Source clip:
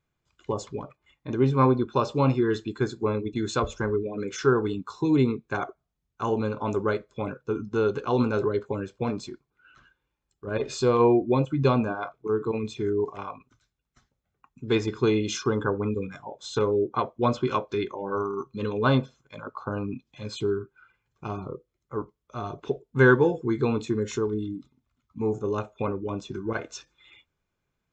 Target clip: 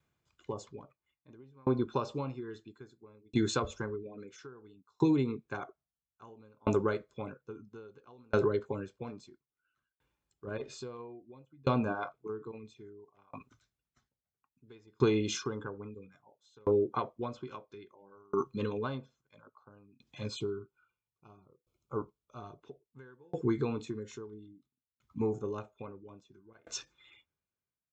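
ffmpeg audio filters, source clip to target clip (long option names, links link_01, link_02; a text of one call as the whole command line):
ffmpeg -i in.wav -filter_complex "[0:a]highpass=54,acompressor=threshold=-24dB:ratio=10,asplit=3[link_01][link_02][link_03];[link_01]afade=type=out:start_time=20.28:duration=0.02[link_04];[link_02]asuperstop=centerf=1800:order=20:qfactor=2.8,afade=type=in:start_time=20.28:duration=0.02,afade=type=out:start_time=22.4:duration=0.02[link_05];[link_03]afade=type=in:start_time=22.4:duration=0.02[link_06];[link_04][link_05][link_06]amix=inputs=3:normalize=0,aeval=exprs='val(0)*pow(10,-35*if(lt(mod(0.6*n/s,1),2*abs(0.6)/1000),1-mod(0.6*n/s,1)/(2*abs(0.6)/1000),(mod(0.6*n/s,1)-2*abs(0.6)/1000)/(1-2*abs(0.6)/1000))/20)':channel_layout=same,volume=3dB" out.wav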